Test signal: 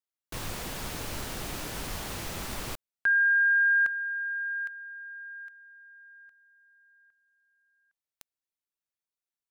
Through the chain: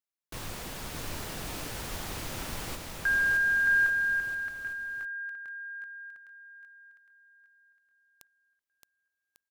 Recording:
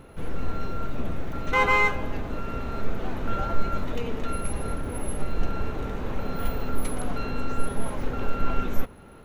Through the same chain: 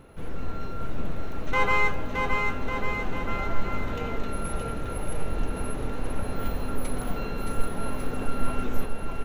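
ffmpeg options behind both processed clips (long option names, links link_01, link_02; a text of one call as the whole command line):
ffmpeg -i in.wav -af "aecho=1:1:620|1147|1595|1976|2299:0.631|0.398|0.251|0.158|0.1,volume=-3dB" out.wav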